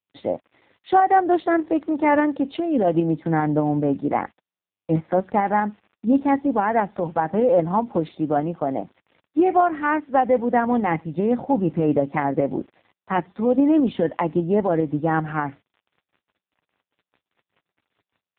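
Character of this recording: tremolo saw up 5 Hz, depth 35%; a quantiser's noise floor 10-bit, dither none; AMR-NB

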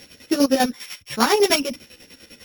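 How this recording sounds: a buzz of ramps at a fixed pitch in blocks of 8 samples; chopped level 10 Hz, depth 65%, duty 45%; a shimmering, thickened sound

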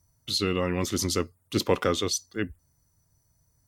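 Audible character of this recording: noise floor -70 dBFS; spectral tilt -4.0 dB/octave

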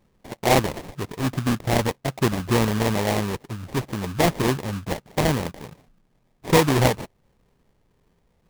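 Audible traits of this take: aliases and images of a low sample rate 1.4 kHz, jitter 20%

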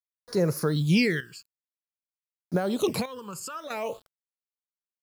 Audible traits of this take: a quantiser's noise floor 8-bit, dither none; phasing stages 12, 0.52 Hz, lowest notch 620–3100 Hz; chopped level 0.54 Hz, depth 65%, duty 65%

